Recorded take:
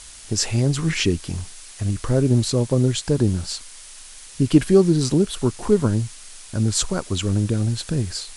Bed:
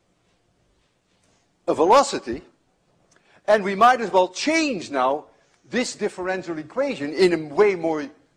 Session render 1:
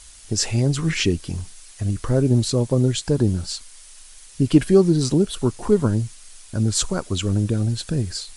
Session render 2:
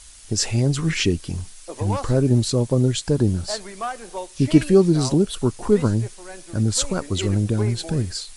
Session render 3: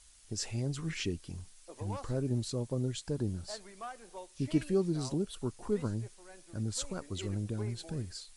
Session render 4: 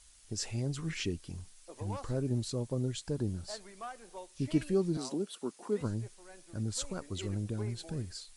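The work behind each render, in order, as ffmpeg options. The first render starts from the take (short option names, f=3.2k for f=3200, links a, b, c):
-af "afftdn=nr=6:nf=-42"
-filter_complex "[1:a]volume=-14dB[a];[0:a][a]amix=inputs=2:normalize=0"
-af "volume=-15dB"
-filter_complex "[0:a]asettb=1/sr,asplit=3[a][b][c];[a]atrim=end=4.974[d];[b]atrim=start=4.97:end=5.81,asetpts=PTS-STARTPTS,afade=t=in:d=0.004:c=qsin,afade=t=out:st=0.836:d=0.004:c=qsin,highpass=f=210:w=0.5412,highpass=f=210:w=1.3066[e];[c]atrim=start=5.806[f];[d][e]acrossfade=d=0.004:c1=hsin:c2=qsin[g];[g][f]acrossfade=d=0.004:c1=qsin:c2=hsin"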